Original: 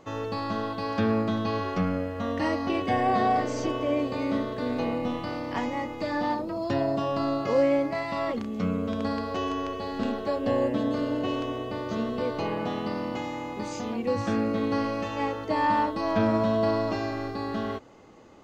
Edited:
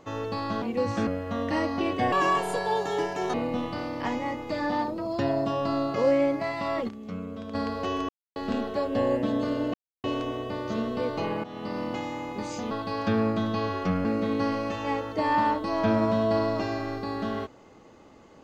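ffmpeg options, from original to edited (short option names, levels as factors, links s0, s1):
-filter_complex "[0:a]asplit=13[s0][s1][s2][s3][s4][s5][s6][s7][s8][s9][s10][s11][s12];[s0]atrim=end=0.622[s13];[s1]atrim=start=13.918:end=14.372[s14];[s2]atrim=start=1.958:end=3.014[s15];[s3]atrim=start=3.01:end=4.85,asetpts=PTS-STARTPTS,asetrate=66591,aresample=44100[s16];[s4]atrim=start=4.846:end=8.402[s17];[s5]atrim=start=8.398:end=9.062,asetpts=PTS-STARTPTS,volume=0.398[s18];[s6]atrim=start=9.058:end=9.6,asetpts=PTS-STARTPTS,afade=t=out:st=0.538:d=0.004:c=hsin[s19];[s7]atrim=start=9.6:end=9.87,asetpts=PTS-STARTPTS,volume=0[s20];[s8]atrim=start=9.87:end=11.25,asetpts=PTS-STARTPTS,afade=t=in:d=0.004:c=hsin,afade=t=out:st=1.376:d=0.004:c=hsin,apad=pad_dur=0.3[s21];[s9]atrim=start=11.25:end=12.65,asetpts=PTS-STARTPTS,afade=t=in:d=0.004:c=hsin,afade=t=out:st=1.396:d=0.004:c=hsin:silence=0.16788[s22];[s10]atrim=start=12.65:end=13.922,asetpts=PTS-STARTPTS,afade=t=in:d=0.36:silence=0.16788[s23];[s11]atrim=start=0.618:end=1.962[s24];[s12]atrim=start=14.368[s25];[s13][s14]acrossfade=d=0.004:c1=hsin:c2=hsin[s26];[s26][s15]acrossfade=d=0.004:c1=hsin:c2=hsin[s27];[s27][s16]acrossfade=d=0.004:c1=hsin:c2=hsin[s28];[s28][s17]acrossfade=d=0.004:c1=hsin:c2=hsin[s29];[s29][s18]acrossfade=d=0.004:c1=hsin:c2=hsin[s30];[s19][s20][s21][s22][s23]concat=n=5:v=0:a=1[s31];[s30][s31]acrossfade=d=0.004:c1=hsin:c2=hsin[s32];[s32][s24]acrossfade=d=0.004:c1=hsin:c2=hsin[s33];[s33][s25]acrossfade=d=0.004:c1=hsin:c2=hsin"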